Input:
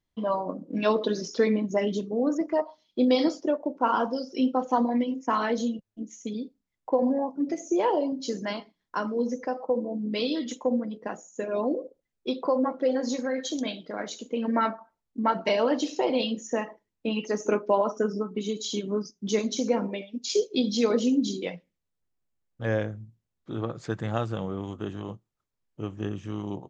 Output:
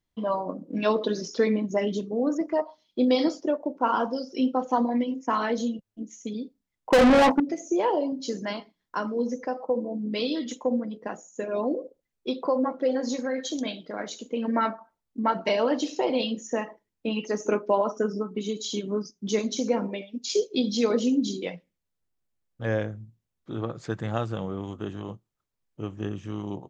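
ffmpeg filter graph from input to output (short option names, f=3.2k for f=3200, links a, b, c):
-filter_complex "[0:a]asettb=1/sr,asplit=3[a][b][c];[a]atrim=end=6.904[d];[b]atrim=start=6.9:end=7.4,asetpts=PTS-STARTPTS,afade=t=in:d=0.004:c=qsin,afade=t=out:st=0.496:d=0.004:c=qsin,lowshelf=f=180:g=10,agate=range=-33dB:threshold=-36dB:ratio=3:release=100:detection=peak,asplit=2[e][f];[f]highpass=f=720:p=1,volume=34dB,asoftclip=type=tanh:threshold=-10.5dB[g];[e][g]amix=inputs=2:normalize=0,lowpass=f=6.2k:p=1,volume=-6dB[h];[c]atrim=start=7.396[i];[d][h]acrossfade=d=0.004:c1=hsin:c2=qsin[j];[j][i]acrossfade=d=0.004:c1=qsin:c2=hsin"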